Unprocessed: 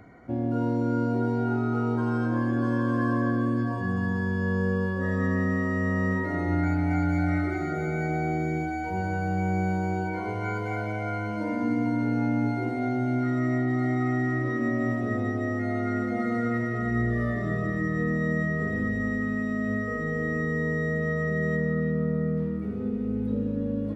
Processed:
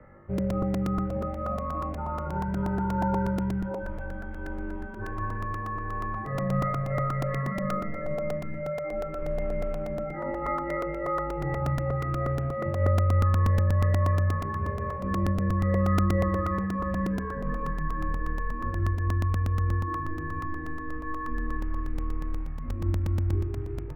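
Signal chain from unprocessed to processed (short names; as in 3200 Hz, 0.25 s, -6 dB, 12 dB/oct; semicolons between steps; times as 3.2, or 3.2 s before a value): 12.3–12.88 median filter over 15 samples; reverb removal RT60 0.96 s; 9.18–10.14 tilt -2 dB/oct; companded quantiser 6-bit; air absorption 200 m; flutter echo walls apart 3.4 m, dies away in 0.4 s; mistuned SSB -160 Hz 160–2400 Hz; crackling interface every 0.12 s, samples 128, repeat, from 0.38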